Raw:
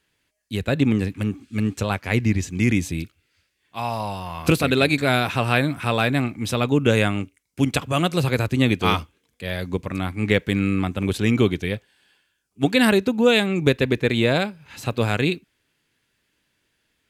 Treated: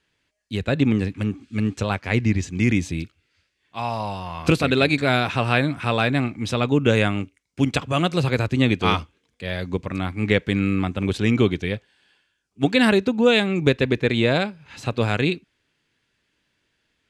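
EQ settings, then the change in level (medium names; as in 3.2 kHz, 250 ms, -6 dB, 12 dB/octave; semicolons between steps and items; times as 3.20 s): low-pass 6.9 kHz 12 dB/octave; 0.0 dB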